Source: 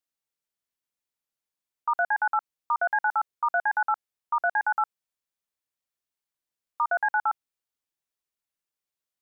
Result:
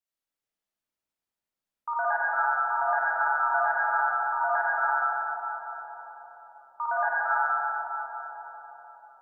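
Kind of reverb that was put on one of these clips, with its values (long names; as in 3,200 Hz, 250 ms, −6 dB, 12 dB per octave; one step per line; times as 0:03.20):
comb and all-pass reverb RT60 4.7 s, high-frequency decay 0.25×, pre-delay 10 ms, DRR −8.5 dB
level −7 dB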